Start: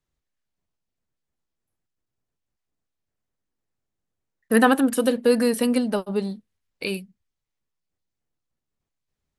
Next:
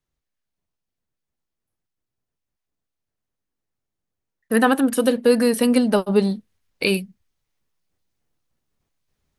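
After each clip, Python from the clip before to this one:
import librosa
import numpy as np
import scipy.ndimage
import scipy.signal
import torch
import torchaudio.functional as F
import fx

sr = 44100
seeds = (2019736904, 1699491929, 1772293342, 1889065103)

y = fx.notch(x, sr, hz=7500.0, q=19.0)
y = fx.rider(y, sr, range_db=10, speed_s=0.5)
y = F.gain(torch.from_numpy(y), 3.5).numpy()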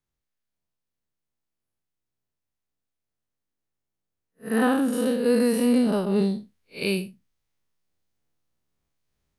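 y = fx.spec_blur(x, sr, span_ms=127.0)
y = F.gain(torch.from_numpy(y), -1.5).numpy()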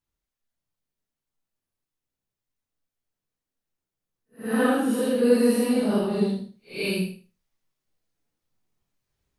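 y = fx.phase_scramble(x, sr, seeds[0], window_ms=200)
y = fx.echo_feedback(y, sr, ms=78, feedback_pct=20, wet_db=-11.0)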